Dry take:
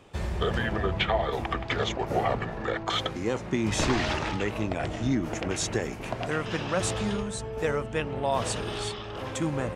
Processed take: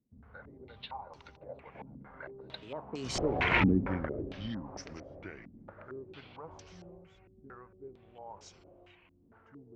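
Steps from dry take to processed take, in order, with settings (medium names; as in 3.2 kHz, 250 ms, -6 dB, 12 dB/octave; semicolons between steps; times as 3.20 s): Doppler pass-by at 3.64 s, 58 m/s, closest 6.9 m; step-sequenced low-pass 4.4 Hz 240–5600 Hz; trim +3 dB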